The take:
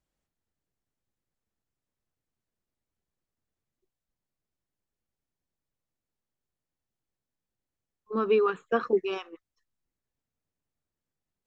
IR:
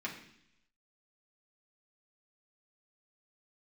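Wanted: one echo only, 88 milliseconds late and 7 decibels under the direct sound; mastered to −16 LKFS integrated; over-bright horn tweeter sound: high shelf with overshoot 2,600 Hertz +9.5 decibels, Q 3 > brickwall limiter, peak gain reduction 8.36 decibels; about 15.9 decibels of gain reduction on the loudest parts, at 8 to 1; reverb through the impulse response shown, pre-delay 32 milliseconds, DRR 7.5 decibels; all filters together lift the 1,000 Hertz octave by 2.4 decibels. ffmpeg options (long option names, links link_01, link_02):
-filter_complex "[0:a]equalizer=frequency=1000:width_type=o:gain=6,acompressor=threshold=-35dB:ratio=8,aecho=1:1:88:0.447,asplit=2[link_01][link_02];[1:a]atrim=start_sample=2205,adelay=32[link_03];[link_02][link_03]afir=irnorm=-1:irlink=0,volume=-10dB[link_04];[link_01][link_04]amix=inputs=2:normalize=0,highshelf=frequency=2600:width_type=q:width=3:gain=9.5,volume=26dB,alimiter=limit=-6dB:level=0:latency=1"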